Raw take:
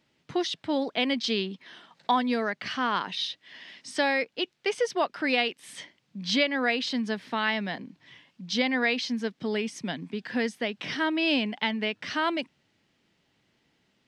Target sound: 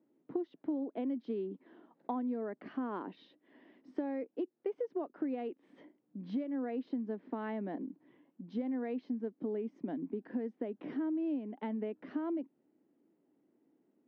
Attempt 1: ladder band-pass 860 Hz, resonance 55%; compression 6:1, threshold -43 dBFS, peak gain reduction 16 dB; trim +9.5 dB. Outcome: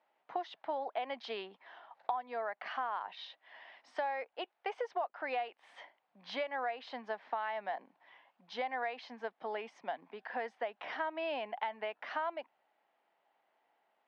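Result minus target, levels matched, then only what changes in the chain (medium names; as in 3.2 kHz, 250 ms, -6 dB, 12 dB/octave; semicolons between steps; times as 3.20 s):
250 Hz band -16.5 dB
change: ladder band-pass 340 Hz, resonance 55%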